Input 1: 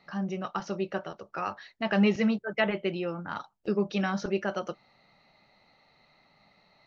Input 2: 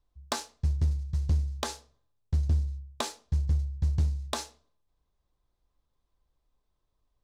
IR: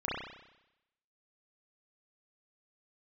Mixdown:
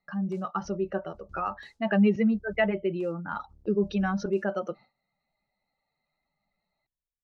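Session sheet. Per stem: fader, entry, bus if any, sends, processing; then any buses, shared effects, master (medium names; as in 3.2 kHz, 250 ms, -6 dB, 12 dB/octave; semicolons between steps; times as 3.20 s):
+2.0 dB, 0.00 s, no send, spectral contrast enhancement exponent 1.6; gate with hold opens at -51 dBFS
-19.5 dB, 0.00 s, no send, octave divider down 1 oct, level 0 dB; bass shelf 470 Hz +4.5 dB; tremolo triangle 0.8 Hz, depth 75%; auto duck -11 dB, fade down 0.25 s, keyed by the first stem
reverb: none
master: none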